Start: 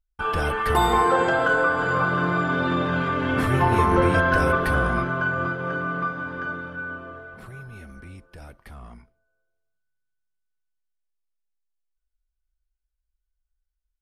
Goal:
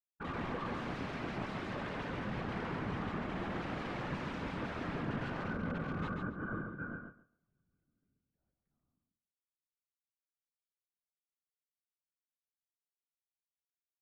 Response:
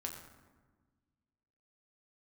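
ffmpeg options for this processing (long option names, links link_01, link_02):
-filter_complex "[0:a]agate=range=-48dB:threshold=-30dB:ratio=16:detection=peak,aeval=exprs='(mod(10*val(0)+1,2)-1)/10':channel_layout=same,equalizer=frequency=190:width=1.1:gain=12.5,areverse,acompressor=threshold=-37dB:ratio=6,areverse,afftfilt=real='hypot(re,im)*cos(2*PI*random(0))':imag='hypot(re,im)*sin(2*PI*random(1))':win_size=512:overlap=0.75,lowpass=1700,asplit=2[link_01][link_02];[link_02]aecho=0:1:138|276|414:0.531|0.0903|0.0153[link_03];[link_01][link_03]amix=inputs=2:normalize=0,volume=6dB"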